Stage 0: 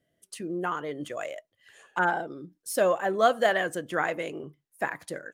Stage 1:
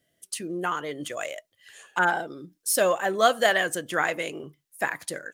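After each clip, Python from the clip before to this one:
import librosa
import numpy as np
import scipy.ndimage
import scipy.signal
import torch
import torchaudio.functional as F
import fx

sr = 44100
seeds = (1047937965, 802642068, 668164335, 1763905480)

y = fx.high_shelf(x, sr, hz=2100.0, db=10.5)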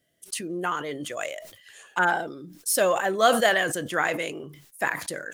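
y = fx.sustainer(x, sr, db_per_s=78.0)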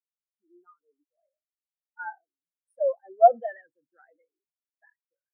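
y = fx.spectral_expand(x, sr, expansion=4.0)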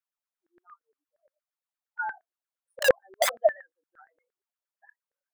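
y = (np.mod(10.0 ** (19.0 / 20.0) * x + 1.0, 2.0) - 1.0) / 10.0 ** (19.0 / 20.0)
y = fx.filter_lfo_highpass(y, sr, shape='saw_down', hz=8.6, low_hz=480.0, high_hz=1700.0, q=5.5)
y = y * 10.0 ** (-2.5 / 20.0)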